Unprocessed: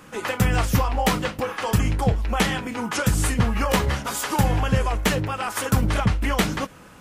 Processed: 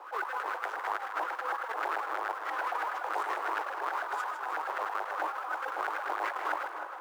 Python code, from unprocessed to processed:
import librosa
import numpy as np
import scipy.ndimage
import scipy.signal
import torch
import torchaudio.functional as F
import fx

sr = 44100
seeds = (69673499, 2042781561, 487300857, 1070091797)

p1 = fx.halfwave_hold(x, sr)
p2 = fx.filter_lfo_bandpass(p1, sr, shape='saw_up', hz=9.2, low_hz=740.0, high_hz=1600.0, q=6.0)
p3 = scipy.signal.sosfilt(scipy.signal.butter(16, 320.0, 'highpass', fs=sr, output='sos'), p2)
p4 = fx.quant_float(p3, sr, bits=2)
p5 = p3 + F.gain(torch.from_numpy(p4), -6.0).numpy()
p6 = fx.over_compress(p5, sr, threshold_db=-36.0, ratio=-1.0)
y = p6 + fx.echo_split(p6, sr, split_hz=1200.0, low_ms=290, high_ms=156, feedback_pct=52, wet_db=-8, dry=0)